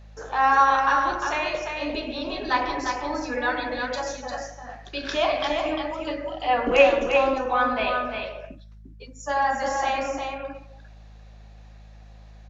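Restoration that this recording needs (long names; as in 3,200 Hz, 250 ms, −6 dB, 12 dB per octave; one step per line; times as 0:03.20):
hum removal 52.8 Hz, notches 4
echo removal 350 ms −5 dB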